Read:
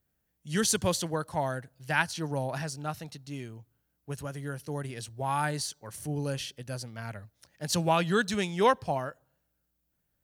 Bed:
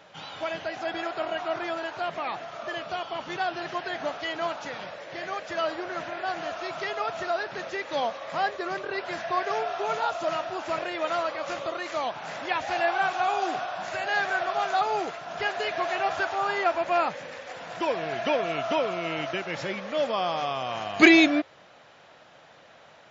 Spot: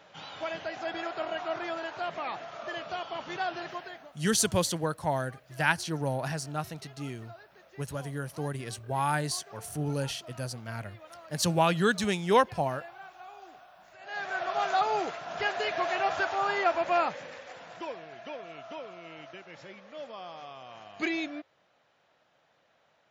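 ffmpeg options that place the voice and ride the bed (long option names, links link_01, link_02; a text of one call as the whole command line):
ffmpeg -i stem1.wav -i stem2.wav -filter_complex "[0:a]adelay=3700,volume=1dB[link_01];[1:a]volume=17dB,afade=type=out:start_time=3.57:duration=0.51:silence=0.11885,afade=type=in:start_time=13.98:duration=0.67:silence=0.0944061,afade=type=out:start_time=16.91:duration=1.16:silence=0.199526[link_02];[link_01][link_02]amix=inputs=2:normalize=0" out.wav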